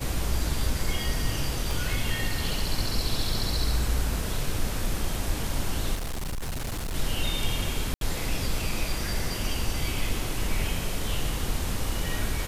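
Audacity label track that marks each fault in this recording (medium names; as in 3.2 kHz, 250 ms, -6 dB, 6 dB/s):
1.710000	1.710000	pop
5.940000	6.950000	clipped -28 dBFS
7.940000	8.010000	dropout 72 ms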